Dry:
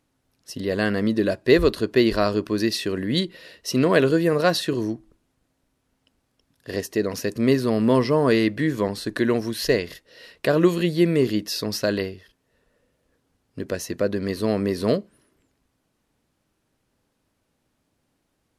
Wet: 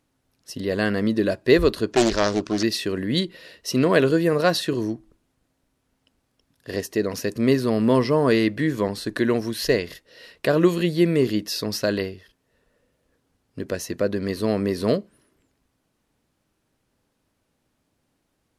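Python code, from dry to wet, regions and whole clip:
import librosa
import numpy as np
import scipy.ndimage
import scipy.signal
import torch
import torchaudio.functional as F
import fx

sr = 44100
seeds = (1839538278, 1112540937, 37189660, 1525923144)

y = fx.chain(x, sr, fx.lowpass_res(hz=6600.0, q=3.2),
    fx.doppler_dist(depth_ms=0.56), at=(1.92, 2.63))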